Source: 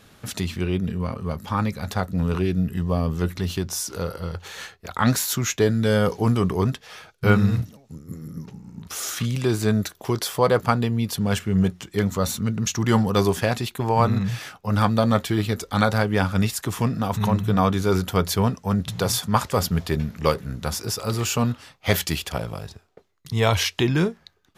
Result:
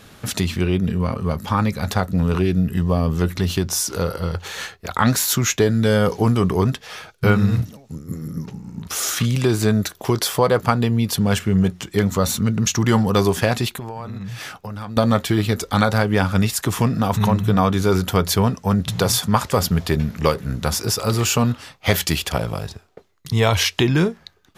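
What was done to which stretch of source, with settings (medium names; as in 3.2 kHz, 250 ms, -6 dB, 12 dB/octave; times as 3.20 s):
13.78–14.97 s: compression 8:1, threshold -34 dBFS
whole clip: compression 2:1, threshold -22 dBFS; trim +6.5 dB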